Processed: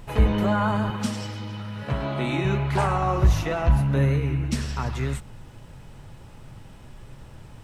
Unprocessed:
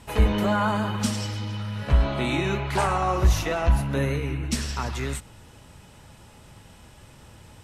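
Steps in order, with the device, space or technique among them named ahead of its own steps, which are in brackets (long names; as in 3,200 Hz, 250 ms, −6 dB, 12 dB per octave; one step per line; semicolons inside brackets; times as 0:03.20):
car interior (parametric band 130 Hz +7.5 dB 0.6 octaves; high-shelf EQ 3,400 Hz −7 dB; brown noise bed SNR 22 dB)
0:00.90–0:02.45: Bessel high-pass filter 170 Hz, order 2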